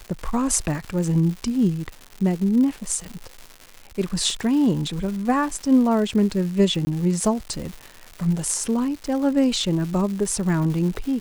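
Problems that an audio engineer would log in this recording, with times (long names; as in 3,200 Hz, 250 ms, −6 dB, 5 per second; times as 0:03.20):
surface crackle 280 per second −30 dBFS
0:06.85–0:06.87: drop-out 20 ms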